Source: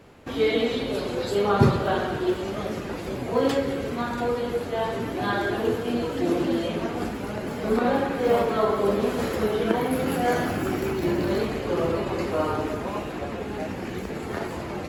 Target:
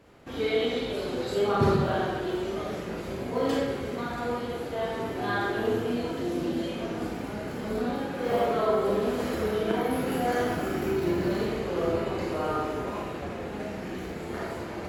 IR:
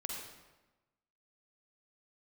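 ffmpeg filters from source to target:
-filter_complex "[0:a]asettb=1/sr,asplit=3[s0][s1][s2];[s0]atrim=end=6.114[s3];[s1]atrim=start=6.11:end=8.2,asetpts=PTS-STARTPTS,afade=t=in:d=0.004:c=qsin,afade=t=out:st=2.086:d=0.004:c=qsin,acrossover=split=280|3000[s4][s5][s6];[s5]acompressor=threshold=0.0398:ratio=6[s7];[s4][s7][s6]amix=inputs=3:normalize=0[s8];[s2]atrim=start=8.196[s9];[s3][s8]acrossfade=d=0.004:c1=hsin:c2=qsin[s10];[s10][s9]acrossfade=d=0.004:c1=qsin:c2=hsin[s11];[1:a]atrim=start_sample=2205,asetrate=66150,aresample=44100[s12];[s11][s12]afir=irnorm=-1:irlink=0"

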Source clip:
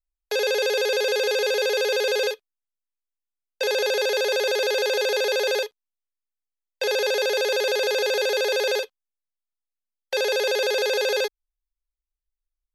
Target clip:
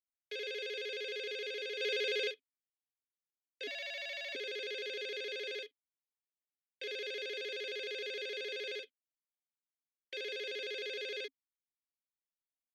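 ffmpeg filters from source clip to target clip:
-filter_complex "[0:a]asettb=1/sr,asplit=3[s0][s1][s2];[s0]atrim=end=3.674[s3];[s1]atrim=start=3.67:end=4.35,asetpts=PTS-STARTPTS,afade=t=in:d=0.004:c=qsin,afade=t=out:st=0.676:d=0.004:c=qsin,afreqshift=150[s4];[s2]atrim=start=4.346[s5];[s3][s4]acrossfade=d=0.004:c1=hsin:c2=qsin[s6];[s6][s5]acrossfade=d=0.004:c1=qsin:c2=hsin,asplit=3[s7][s8][s9];[s7]bandpass=f=270:t=q:w=8,volume=1[s10];[s8]bandpass=f=2290:t=q:w=8,volume=0.501[s11];[s9]bandpass=f=3010:t=q:w=8,volume=0.355[s12];[s10][s11][s12]amix=inputs=3:normalize=0,asplit=3[s13][s14][s15];[s13]afade=t=out:st=1.8:d=0.02[s16];[s14]acontrast=55,afade=t=in:st=1.8:d=0.02,afade=t=out:st=2.3:d=0.02[s17];[s15]afade=t=in:st=2.3:d=0.02[s18];[s16][s17][s18]amix=inputs=3:normalize=0,volume=1.12"

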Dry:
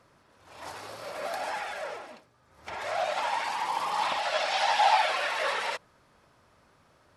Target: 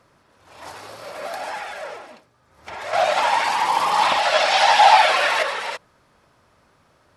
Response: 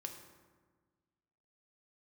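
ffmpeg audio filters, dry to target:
-filter_complex "[0:a]asettb=1/sr,asplit=3[s0][s1][s2];[s0]atrim=end=2.934[s3];[s1]atrim=start=2.93:end=5.43,asetpts=PTS-STARTPTS,afade=t=in:d=0.004:c=qsin,afade=t=out:st=2.496:d=0.004:c=qsin,acontrast=87[s4];[s2]atrim=start=5.426[s5];[s3][s4]acrossfade=d=0.004:c1=hsin:c2=qsin[s6];[s6][s5]acrossfade=d=0.004:c1=qsin:c2=hsin,volume=1.5"

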